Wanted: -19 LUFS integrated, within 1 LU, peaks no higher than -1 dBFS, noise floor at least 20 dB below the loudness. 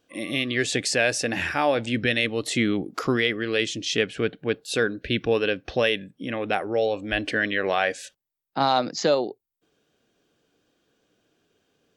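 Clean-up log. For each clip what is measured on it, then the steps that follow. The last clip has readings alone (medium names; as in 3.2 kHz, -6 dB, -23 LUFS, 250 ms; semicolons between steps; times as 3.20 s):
loudness -24.5 LUFS; peak level -8.5 dBFS; loudness target -19.0 LUFS
-> trim +5.5 dB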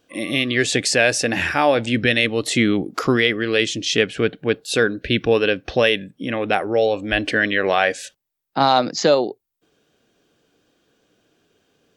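loudness -19.0 LUFS; peak level -3.0 dBFS; noise floor -77 dBFS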